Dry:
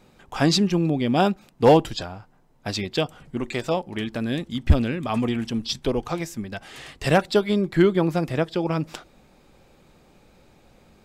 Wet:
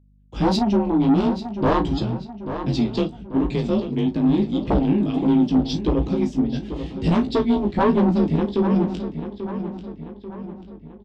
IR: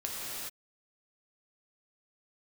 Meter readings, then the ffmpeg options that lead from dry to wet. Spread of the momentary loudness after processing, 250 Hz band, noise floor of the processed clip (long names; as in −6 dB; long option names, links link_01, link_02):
15 LU, +5.5 dB, −42 dBFS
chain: -filter_complex "[0:a]lowpass=6300,aemphasis=mode=reproduction:type=50fm,agate=range=-37dB:threshold=-42dB:ratio=16:detection=peak,firequalizer=gain_entry='entry(290,0);entry(810,-25);entry(3100,-9)':delay=0.05:min_phase=1,afreqshift=33,aeval=exprs='0.708*sin(PI/2*5.62*val(0)/0.708)':channel_layout=same,flanger=delay=15:depth=4.7:speed=1.5,asoftclip=type=tanh:threshold=-5dB,aeval=exprs='val(0)+0.00398*(sin(2*PI*50*n/s)+sin(2*PI*2*50*n/s)/2+sin(2*PI*3*50*n/s)/3+sin(2*PI*4*50*n/s)/4+sin(2*PI*5*50*n/s)/5)':channel_layout=same,asplit=2[link_01][link_02];[link_02]adelay=34,volume=-12.5dB[link_03];[link_01][link_03]amix=inputs=2:normalize=0,asplit=2[link_04][link_05];[link_05]adelay=839,lowpass=frequency=4200:poles=1,volume=-10dB,asplit=2[link_06][link_07];[link_07]adelay=839,lowpass=frequency=4200:poles=1,volume=0.5,asplit=2[link_08][link_09];[link_09]adelay=839,lowpass=frequency=4200:poles=1,volume=0.5,asplit=2[link_10][link_11];[link_11]adelay=839,lowpass=frequency=4200:poles=1,volume=0.5,asplit=2[link_12][link_13];[link_13]adelay=839,lowpass=frequency=4200:poles=1,volume=0.5[link_14];[link_06][link_08][link_10][link_12][link_14]amix=inputs=5:normalize=0[link_15];[link_04][link_15]amix=inputs=2:normalize=0,volume=-6dB"